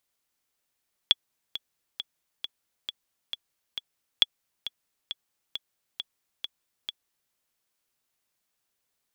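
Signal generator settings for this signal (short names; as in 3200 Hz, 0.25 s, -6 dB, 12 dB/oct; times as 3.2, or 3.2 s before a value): metronome 135 bpm, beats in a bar 7, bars 2, 3380 Hz, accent 14.5 dB -4.5 dBFS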